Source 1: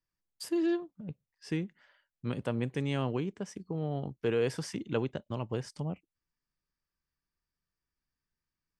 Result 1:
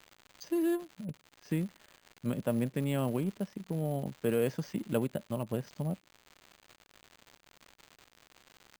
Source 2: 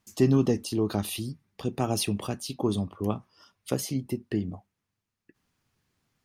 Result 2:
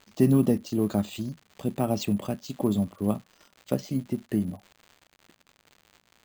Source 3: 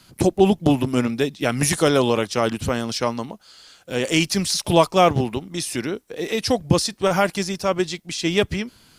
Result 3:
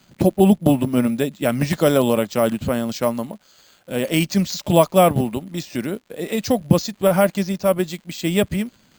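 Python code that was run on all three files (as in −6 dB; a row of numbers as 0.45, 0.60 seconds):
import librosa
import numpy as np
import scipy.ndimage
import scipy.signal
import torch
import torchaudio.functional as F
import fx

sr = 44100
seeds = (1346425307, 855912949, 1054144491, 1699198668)

p1 = np.sign(x) * np.maximum(np.abs(x) - 10.0 ** (-39.5 / 20.0), 0.0)
p2 = x + F.gain(torch.from_numpy(p1), -7.0).numpy()
p3 = fx.small_body(p2, sr, hz=(200.0, 580.0), ring_ms=25, db=8)
p4 = fx.dmg_crackle(p3, sr, seeds[0], per_s=150.0, level_db=-32.0)
p5 = np.repeat(scipy.signal.resample_poly(p4, 1, 4), 4)[:len(p4)]
y = F.gain(torch.from_numpy(p5), -5.5).numpy()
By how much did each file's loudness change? 0.0, +1.5, +1.5 LU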